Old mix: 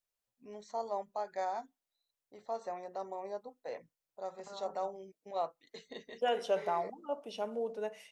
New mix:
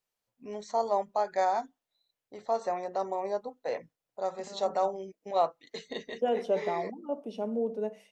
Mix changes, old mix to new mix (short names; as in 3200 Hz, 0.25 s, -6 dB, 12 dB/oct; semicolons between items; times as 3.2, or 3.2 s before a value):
first voice +9.0 dB; second voice: add EQ curve 130 Hz 0 dB, 220 Hz +12 dB, 1500 Hz -6 dB